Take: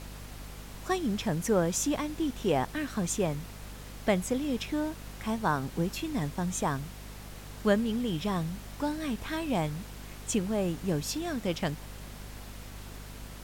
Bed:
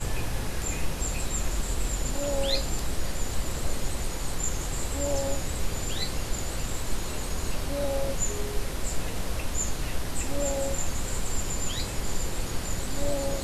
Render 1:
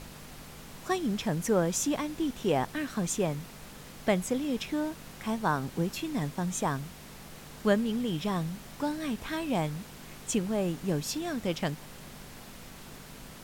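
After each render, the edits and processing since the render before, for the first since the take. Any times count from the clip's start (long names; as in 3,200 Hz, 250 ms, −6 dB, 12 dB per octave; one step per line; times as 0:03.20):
mains-hum notches 50/100 Hz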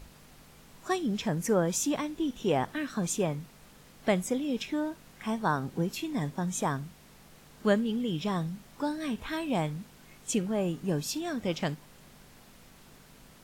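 noise reduction from a noise print 8 dB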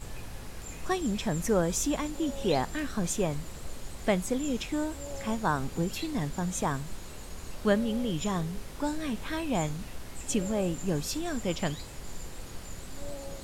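mix in bed −11.5 dB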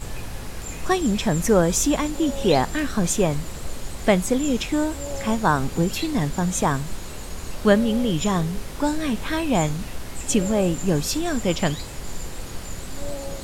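level +8.5 dB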